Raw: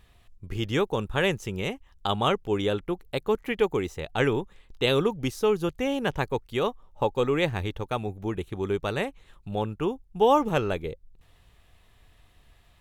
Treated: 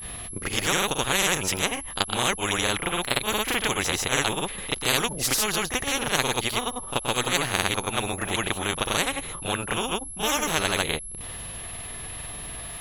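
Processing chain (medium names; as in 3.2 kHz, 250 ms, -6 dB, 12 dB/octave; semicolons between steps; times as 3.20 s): granulator 100 ms, pitch spread up and down by 0 st; whistle 11 kHz -41 dBFS; pre-echo 32 ms -12.5 dB; spectrum-flattening compressor 4:1; trim +5.5 dB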